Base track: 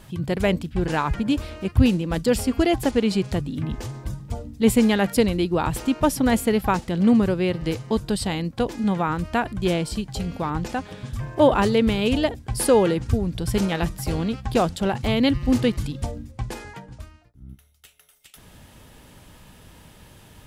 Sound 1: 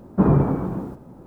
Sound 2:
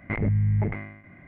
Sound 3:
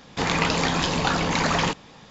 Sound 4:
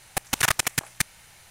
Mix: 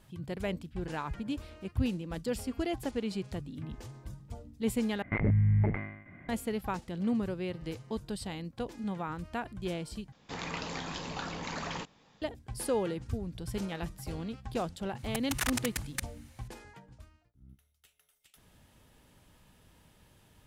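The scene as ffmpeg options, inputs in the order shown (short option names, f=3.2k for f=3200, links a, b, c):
-filter_complex "[0:a]volume=-13.5dB,asplit=3[a][b][c];[a]atrim=end=5.024[d];[2:a]atrim=end=1.27,asetpts=PTS-STARTPTS,volume=-2.5dB[e];[b]atrim=start=6.286:end=10.124[f];[3:a]atrim=end=2.1,asetpts=PTS-STARTPTS,volume=-15.5dB[g];[c]atrim=start=12.216[h];[4:a]atrim=end=1.5,asetpts=PTS-STARTPTS,volume=-11dB,afade=t=in:d=0.004:c=hsin,afade=t=out:st=1.496:d=0.004:c=hsin,adelay=14980[i];[d][e]acrossfade=d=0.004:c1=hsin:c2=hsin[j];[j][f]acrossfade=d=0.004:c1=hsin:c2=hsin[k];[k][g]acrossfade=d=0.004:c1=hsin:c2=hsin[l];[l][h]acrossfade=d=0.004:c1=hsin:c2=hsin[m];[m][i]amix=inputs=2:normalize=0"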